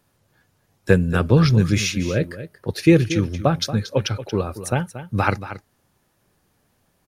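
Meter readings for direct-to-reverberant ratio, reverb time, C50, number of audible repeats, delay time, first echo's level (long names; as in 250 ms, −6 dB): no reverb audible, no reverb audible, no reverb audible, 1, 231 ms, −13.0 dB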